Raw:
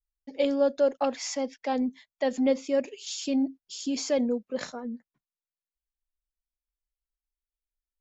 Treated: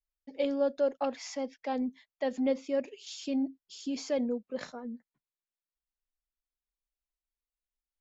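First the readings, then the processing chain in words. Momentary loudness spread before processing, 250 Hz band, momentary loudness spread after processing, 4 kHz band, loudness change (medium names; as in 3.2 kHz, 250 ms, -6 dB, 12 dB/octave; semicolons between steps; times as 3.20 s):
11 LU, -4.5 dB, 12 LU, -7.0 dB, -5.0 dB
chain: distance through air 74 m; trim -4.5 dB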